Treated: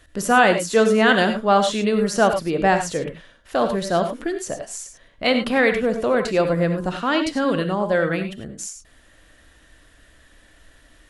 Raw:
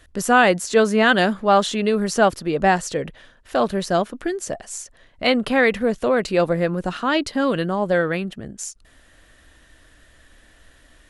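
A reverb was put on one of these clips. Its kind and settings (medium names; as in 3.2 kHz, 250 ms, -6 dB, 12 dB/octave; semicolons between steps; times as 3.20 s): gated-style reverb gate 120 ms rising, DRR 6.5 dB; trim -1 dB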